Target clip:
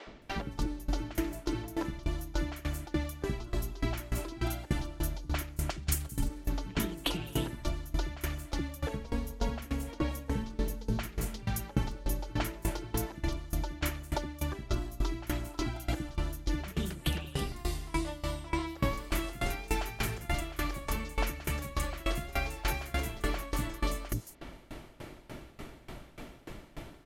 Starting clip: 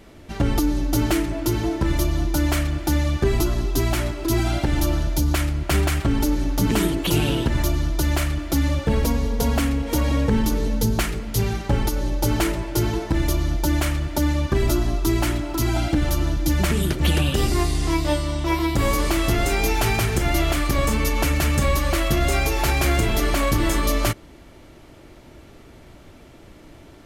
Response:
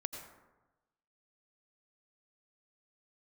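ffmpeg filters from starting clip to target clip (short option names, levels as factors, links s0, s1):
-filter_complex "[0:a]asettb=1/sr,asplit=3[s0][s1][s2];[s0]atrim=end=5.704[s3];[s1]atrim=start=5.7:end=6.22,asetpts=PTS-STARTPTS,afade=t=in:d=0.004:c=qsin,afade=t=out:st=0.516:d=0.004:c=qsin,bass=f=250:g=10,treble=f=4000:g=15[s4];[s2]atrim=start=6.216[s5];[s3][s4]acrossfade=d=0.004:c1=hsin:c2=qsin[s6];[s6][s5]acrossfade=d=0.004:c1=qsin:c2=hsin,acompressor=threshold=0.0282:ratio=5,equalizer=f=86:t=o:w=0.44:g=-8,acrossover=split=380|5900[s7][s8][s9];[s7]adelay=70[s10];[s9]adelay=220[s11];[s10][s8][s11]amix=inputs=3:normalize=0,aeval=exprs='val(0)*pow(10,-21*if(lt(mod(3.4*n/s,1),2*abs(3.4)/1000),1-mod(3.4*n/s,1)/(2*abs(3.4)/1000),(mod(3.4*n/s,1)-2*abs(3.4)/1000)/(1-2*abs(3.4)/1000))/20)':c=same,volume=2.24"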